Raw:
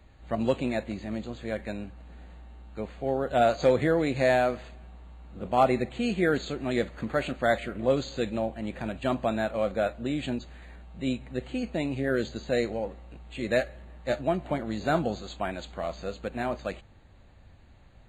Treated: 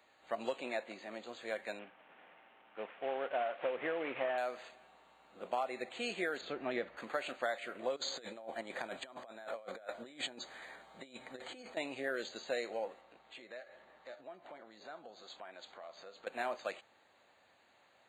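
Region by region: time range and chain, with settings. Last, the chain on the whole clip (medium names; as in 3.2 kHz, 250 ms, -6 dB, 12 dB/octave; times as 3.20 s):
0.61–1.27 s: high-pass 160 Hz 6 dB/octave + treble shelf 4.1 kHz -5.5 dB
1.79–4.38 s: CVSD coder 16 kbps + high-pass 96 Hz
6.41–6.97 s: low-pass 2.8 kHz + bass shelf 200 Hz +11 dB
7.96–11.77 s: band-stop 2.7 kHz, Q 5.2 + compressor with a negative ratio -35 dBFS, ratio -0.5
13.01–16.27 s: low-pass 5.5 kHz + peaking EQ 2.7 kHz -5 dB 0.34 oct + compression 5:1, threshold -42 dBFS
whole clip: high-pass 570 Hz 12 dB/octave; compression 12:1, threshold -30 dBFS; trim -2 dB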